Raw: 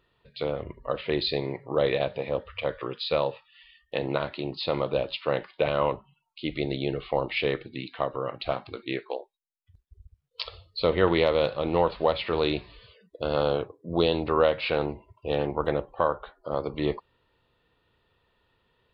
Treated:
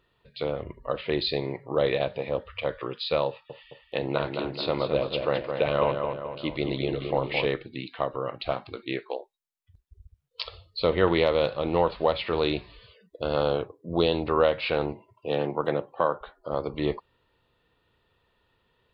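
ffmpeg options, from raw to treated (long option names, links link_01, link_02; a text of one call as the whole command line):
ffmpeg -i in.wav -filter_complex "[0:a]asettb=1/sr,asplit=3[link_01][link_02][link_03];[link_01]atrim=end=3.284[link_04];[link_02]atrim=start=3.28:end=7.46,asetpts=PTS-STARTPTS,afade=type=in:duration=0.004:curve=qsin,afade=type=out:start_time=4.176:duration=0.004:curve=qsin,asplit=2[link_05][link_06];[link_06]adelay=216,lowpass=frequency=3000:poles=1,volume=-5.5dB,asplit=2[link_07][link_08];[link_08]adelay=216,lowpass=frequency=3000:poles=1,volume=0.52,asplit=2[link_09][link_10];[link_10]adelay=216,lowpass=frequency=3000:poles=1,volume=0.52,asplit=2[link_11][link_12];[link_12]adelay=216,lowpass=frequency=3000:poles=1,volume=0.52,asplit=2[link_13][link_14];[link_14]adelay=216,lowpass=frequency=3000:poles=1,volume=0.52,asplit=2[link_15][link_16];[link_16]adelay=216,lowpass=frequency=3000:poles=1,volume=0.52,asplit=2[link_17][link_18];[link_18]adelay=216,lowpass=frequency=3000:poles=1,volume=0.52[link_19];[link_05][link_07][link_09][link_11][link_13][link_15][link_17][link_19]amix=inputs=8:normalize=0,atrim=end_sample=184338[link_20];[link_03]atrim=start=7.456[link_21];[link_04][link_20]acrossfade=duration=0.004:curve1=hsin:curve2=qsin[link_22];[link_22][link_21]acrossfade=duration=0.004:curve1=qsin:curve2=hsin,asettb=1/sr,asplit=3[link_23][link_24][link_25];[link_23]atrim=end=14.934[link_26];[link_24]atrim=start=14.93:end=16.21,asetpts=PTS-STARTPTS,afade=type=in:duration=0.004:curve=qsin,afade=type=out:start_time=1.276:duration=0.004:curve=qsin,highpass=frequency=120:width=0.5412,highpass=frequency=120:width=1.3066[link_27];[link_25]atrim=start=16.206[link_28];[link_26][link_27]acrossfade=duration=0.004:curve1=hsin:curve2=qsin[link_29];[link_29][link_28]acrossfade=duration=0.004:curve1=qsin:curve2=hsin" out.wav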